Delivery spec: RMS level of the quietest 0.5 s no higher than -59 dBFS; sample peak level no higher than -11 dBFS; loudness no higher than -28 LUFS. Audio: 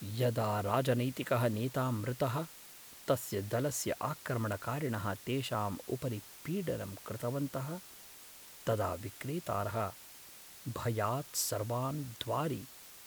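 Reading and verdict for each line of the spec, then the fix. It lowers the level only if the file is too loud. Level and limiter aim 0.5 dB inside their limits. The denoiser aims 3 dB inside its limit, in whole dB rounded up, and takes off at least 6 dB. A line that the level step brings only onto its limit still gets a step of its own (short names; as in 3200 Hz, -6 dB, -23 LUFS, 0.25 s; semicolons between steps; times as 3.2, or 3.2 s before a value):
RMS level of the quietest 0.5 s -53 dBFS: fail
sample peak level -16.5 dBFS: OK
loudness -36.0 LUFS: OK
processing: denoiser 9 dB, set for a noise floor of -53 dBFS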